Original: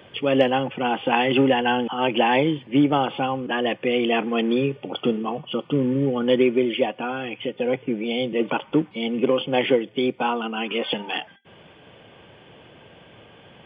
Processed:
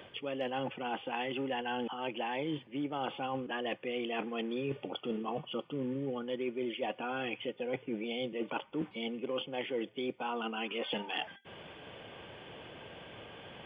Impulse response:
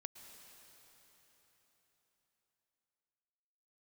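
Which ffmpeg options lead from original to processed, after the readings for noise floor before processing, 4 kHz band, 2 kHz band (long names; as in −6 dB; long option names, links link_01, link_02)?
−50 dBFS, −12.0 dB, −13.0 dB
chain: -af "equalizer=frequency=150:width=0.67:gain=-4,areverse,acompressor=threshold=-33dB:ratio=10,areverse"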